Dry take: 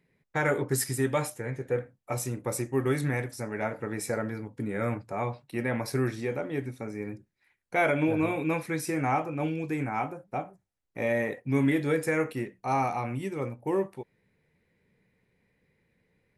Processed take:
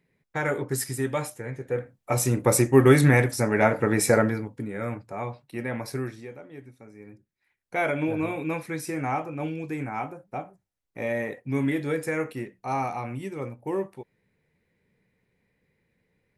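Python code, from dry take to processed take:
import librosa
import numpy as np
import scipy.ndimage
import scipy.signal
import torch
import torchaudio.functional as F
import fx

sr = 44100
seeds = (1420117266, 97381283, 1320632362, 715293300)

y = fx.gain(x, sr, db=fx.line((1.67, -0.5), (2.4, 11.0), (4.2, 11.0), (4.69, -1.5), (5.92, -1.5), (6.38, -11.5), (6.94, -11.5), (7.76, -1.0)))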